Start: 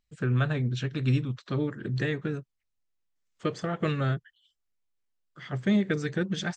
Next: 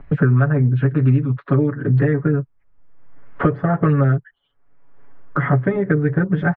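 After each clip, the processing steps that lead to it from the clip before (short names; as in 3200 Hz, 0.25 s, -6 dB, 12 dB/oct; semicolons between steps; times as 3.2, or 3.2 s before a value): LPF 1600 Hz 24 dB/oct; comb 7.1 ms, depth 95%; three-band squash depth 100%; gain +7.5 dB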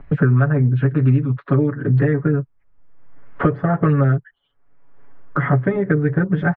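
nothing audible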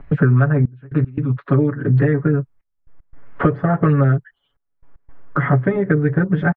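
step gate "xxxxx..x.xxxxxx" 115 bpm -24 dB; gain +1 dB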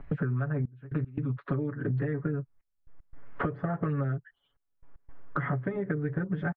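compressor 4:1, threshold -23 dBFS, peak gain reduction 11.5 dB; gain -5.5 dB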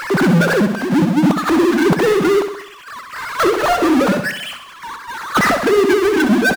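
sine-wave speech; power-law curve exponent 0.35; feedback echo 65 ms, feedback 52%, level -9 dB; gain +9 dB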